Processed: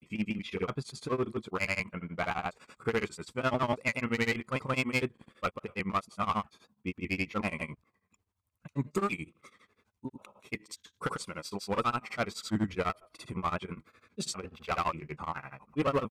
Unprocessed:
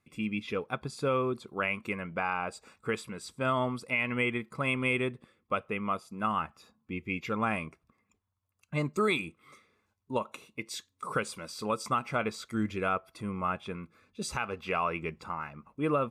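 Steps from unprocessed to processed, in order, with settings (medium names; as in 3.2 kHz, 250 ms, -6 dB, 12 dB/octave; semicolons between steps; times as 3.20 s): pitch shift switched off and on -1 st, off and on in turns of 101 ms; one-sided clip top -28.5 dBFS, bottom -22.5 dBFS; granulator 100 ms, grains 12 per s, pitch spread up and down by 0 st; trim +4 dB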